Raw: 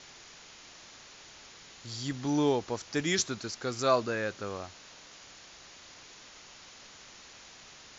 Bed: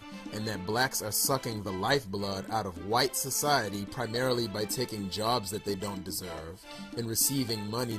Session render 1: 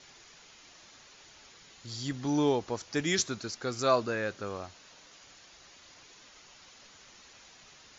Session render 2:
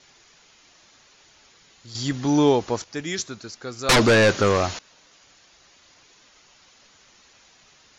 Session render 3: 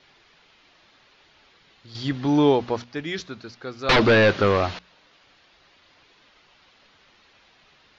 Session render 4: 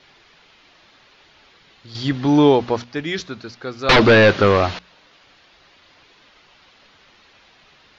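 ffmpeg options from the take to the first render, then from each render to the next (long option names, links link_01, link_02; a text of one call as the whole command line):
ffmpeg -i in.wav -af "afftdn=noise_reduction=6:noise_floor=-52" out.wav
ffmpeg -i in.wav -filter_complex "[0:a]asettb=1/sr,asplit=3[link_01][link_02][link_03];[link_01]atrim=end=3.894[link_04];[link_02]atrim=start=3.89:end=4.79,asetpts=PTS-STARTPTS,afade=type=in:duration=0.004:curve=qsin,afade=type=out:start_time=0.896:duration=0.004:curve=qsin,aeval=exprs='0.251*sin(PI/2*7.08*val(0)/0.251)':channel_layout=same[link_05];[link_03]atrim=start=4.786[link_06];[link_04][link_05]acrossfade=duration=0.004:curve1=hsin:curve2=qsin[link_07];[link_07][link_06]acrossfade=duration=0.004:curve1=qsin:curve2=hsin,asplit=3[link_08][link_09][link_10];[link_08]atrim=end=1.952[link_11];[link_09]atrim=start=1.948:end=2.842,asetpts=PTS-STARTPTS,volume=9dB[link_12];[link_10]atrim=start=2.838[link_13];[link_11][link_12]acrossfade=duration=0.004:curve1=hsin:curve2=hsin[link_14];[link_14][link_13]acrossfade=duration=0.004:curve1=hsin:curve2=hsin" out.wav
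ffmpeg -i in.wav -af "lowpass=frequency=4200:width=0.5412,lowpass=frequency=4200:width=1.3066,bandreject=frequency=60:width_type=h:width=6,bandreject=frequency=120:width_type=h:width=6,bandreject=frequency=180:width_type=h:width=6,bandreject=frequency=240:width_type=h:width=6" out.wav
ffmpeg -i in.wav -af "volume=5dB,alimiter=limit=-3dB:level=0:latency=1" out.wav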